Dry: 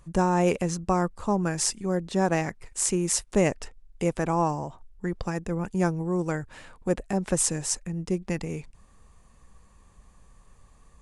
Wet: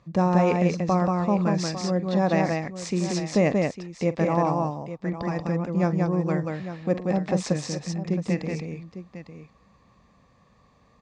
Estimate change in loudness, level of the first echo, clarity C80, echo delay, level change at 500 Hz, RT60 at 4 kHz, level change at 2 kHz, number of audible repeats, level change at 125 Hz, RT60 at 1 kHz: +2.0 dB, -16.0 dB, none, 44 ms, +2.5 dB, none, +1.0 dB, 3, +4.0 dB, none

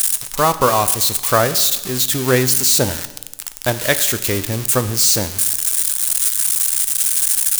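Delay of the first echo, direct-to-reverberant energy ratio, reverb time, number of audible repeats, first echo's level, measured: none, 11.0 dB, 1.1 s, none, none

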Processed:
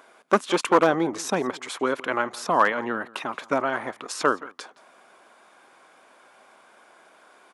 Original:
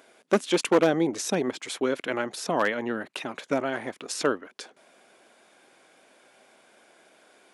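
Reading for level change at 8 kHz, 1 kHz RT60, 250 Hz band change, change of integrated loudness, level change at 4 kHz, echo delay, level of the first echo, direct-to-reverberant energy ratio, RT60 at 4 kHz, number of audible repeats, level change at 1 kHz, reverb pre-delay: -1.0 dB, none, -0.5 dB, +2.5 dB, 0.0 dB, 0.17 s, -21.5 dB, none, none, 1, +8.0 dB, none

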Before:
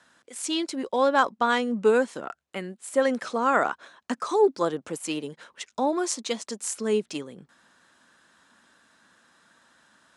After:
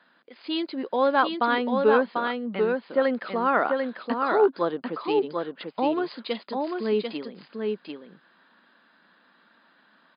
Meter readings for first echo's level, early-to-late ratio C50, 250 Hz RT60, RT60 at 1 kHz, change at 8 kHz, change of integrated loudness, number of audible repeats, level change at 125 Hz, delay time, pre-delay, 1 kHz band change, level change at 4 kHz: -4.0 dB, none, none, none, under -40 dB, +0.5 dB, 1, 0.0 dB, 0.743 s, none, +1.0 dB, -1.0 dB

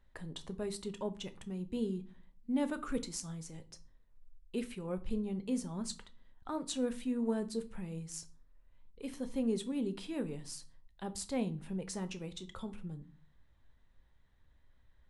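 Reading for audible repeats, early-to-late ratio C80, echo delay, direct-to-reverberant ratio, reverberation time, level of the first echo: none, 24.0 dB, none, 10.0 dB, 0.40 s, none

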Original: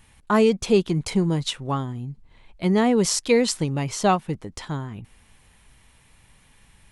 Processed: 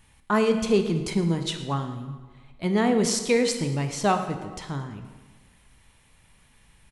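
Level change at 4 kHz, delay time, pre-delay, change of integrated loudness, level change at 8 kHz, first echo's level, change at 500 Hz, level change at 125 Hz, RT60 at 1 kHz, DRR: -2.5 dB, 0.111 s, 21 ms, -2.5 dB, -3.0 dB, -18.0 dB, -2.5 dB, -2.5 dB, 1.3 s, 6.5 dB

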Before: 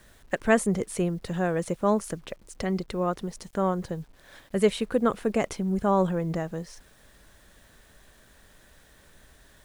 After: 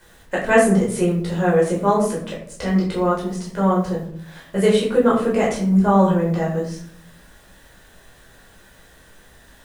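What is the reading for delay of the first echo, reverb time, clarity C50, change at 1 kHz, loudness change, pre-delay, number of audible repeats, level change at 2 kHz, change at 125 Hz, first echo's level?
none, 0.60 s, 5.5 dB, +8.5 dB, +8.5 dB, 11 ms, none, +8.0 dB, +9.0 dB, none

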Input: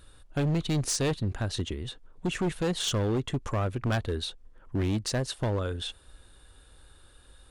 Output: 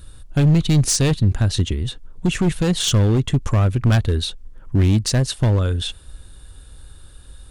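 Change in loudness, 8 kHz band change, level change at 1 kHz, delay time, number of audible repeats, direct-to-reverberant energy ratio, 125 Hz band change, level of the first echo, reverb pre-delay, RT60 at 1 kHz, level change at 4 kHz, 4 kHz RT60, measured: +11.0 dB, +10.5 dB, +5.0 dB, none, none, none, +13.5 dB, none, none, none, +9.0 dB, none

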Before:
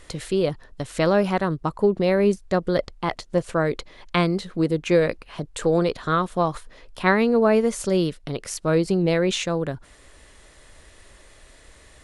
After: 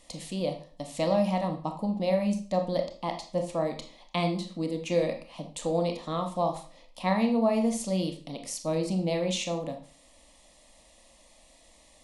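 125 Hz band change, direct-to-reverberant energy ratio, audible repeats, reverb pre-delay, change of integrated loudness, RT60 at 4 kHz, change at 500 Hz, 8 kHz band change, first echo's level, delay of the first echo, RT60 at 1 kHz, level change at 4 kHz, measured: -7.0 dB, 4.5 dB, none, 22 ms, -7.0 dB, 0.40 s, -7.5 dB, -3.5 dB, none, none, 0.40 s, -5.0 dB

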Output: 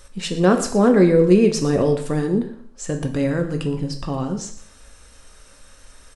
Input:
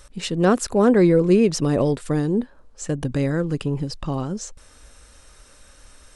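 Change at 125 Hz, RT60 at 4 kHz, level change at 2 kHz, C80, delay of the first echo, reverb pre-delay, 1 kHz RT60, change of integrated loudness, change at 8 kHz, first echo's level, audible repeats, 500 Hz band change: +0.5 dB, 0.50 s, +1.5 dB, 12.0 dB, 0.118 s, 4 ms, 0.55 s, +1.5 dB, +1.5 dB, -16.5 dB, 1, +2.0 dB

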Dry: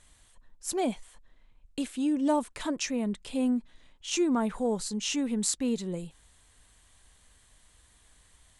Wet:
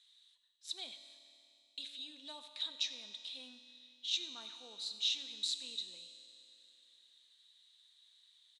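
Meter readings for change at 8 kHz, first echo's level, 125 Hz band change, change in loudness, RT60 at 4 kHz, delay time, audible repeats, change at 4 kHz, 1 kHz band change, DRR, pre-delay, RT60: -14.5 dB, -17.5 dB, under -35 dB, -10.0 dB, 2.9 s, 94 ms, 1, +2.5 dB, -24.0 dB, 7.5 dB, 4 ms, 2.9 s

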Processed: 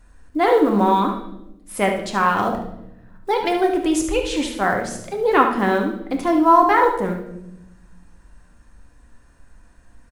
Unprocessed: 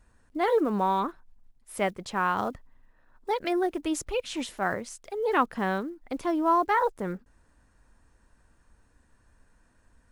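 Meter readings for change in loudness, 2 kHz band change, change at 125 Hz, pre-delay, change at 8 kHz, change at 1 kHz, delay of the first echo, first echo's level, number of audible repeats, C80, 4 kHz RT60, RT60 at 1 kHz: +9.0 dB, +9.0 dB, +9.5 dB, 3 ms, +8.5 dB, +9.5 dB, 72 ms, -8.5 dB, 1, 10.0 dB, 0.75 s, 0.70 s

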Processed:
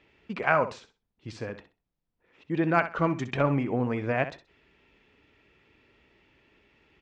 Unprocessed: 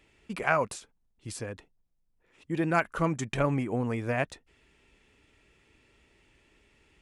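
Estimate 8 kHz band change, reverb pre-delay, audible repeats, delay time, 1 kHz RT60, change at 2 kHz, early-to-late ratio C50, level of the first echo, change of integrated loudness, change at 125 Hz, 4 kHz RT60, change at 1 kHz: under -10 dB, none, 2, 64 ms, none, +2.0 dB, none, -12.0 dB, +2.5 dB, +1.0 dB, none, +2.5 dB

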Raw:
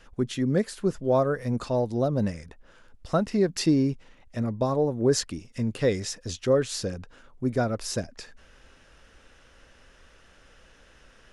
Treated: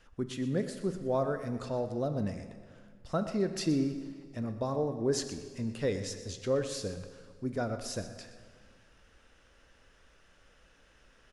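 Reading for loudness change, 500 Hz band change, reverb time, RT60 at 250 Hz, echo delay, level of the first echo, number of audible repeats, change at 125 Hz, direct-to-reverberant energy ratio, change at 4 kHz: -7.5 dB, -7.0 dB, 1.9 s, 2.0 s, 0.122 s, -14.0 dB, 1, -7.5 dB, 7.5 dB, -7.0 dB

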